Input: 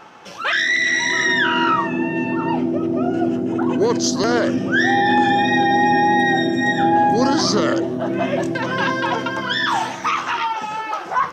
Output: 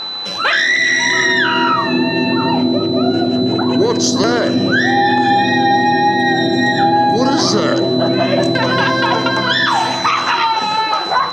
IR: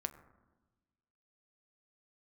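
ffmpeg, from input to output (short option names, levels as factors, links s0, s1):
-filter_complex "[0:a]aeval=exprs='val(0)+0.0316*sin(2*PI*4000*n/s)':c=same,acompressor=threshold=0.112:ratio=6,asplit=2[s0][s1];[1:a]atrim=start_sample=2205,asetrate=22050,aresample=44100[s2];[s1][s2]afir=irnorm=-1:irlink=0,volume=2.11[s3];[s0][s3]amix=inputs=2:normalize=0,volume=0.708"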